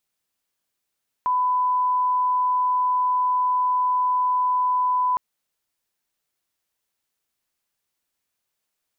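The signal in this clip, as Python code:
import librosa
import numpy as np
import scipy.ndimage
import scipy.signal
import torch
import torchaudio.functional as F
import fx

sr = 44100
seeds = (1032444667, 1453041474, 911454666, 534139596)

y = fx.lineup_tone(sr, length_s=3.91, level_db=-18.0)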